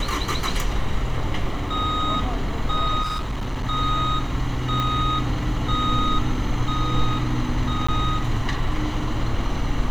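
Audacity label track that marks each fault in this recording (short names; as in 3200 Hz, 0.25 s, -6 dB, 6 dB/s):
3.020000	3.640000	clipped -23 dBFS
4.800000	4.800000	pop -12 dBFS
7.870000	7.880000	gap 15 ms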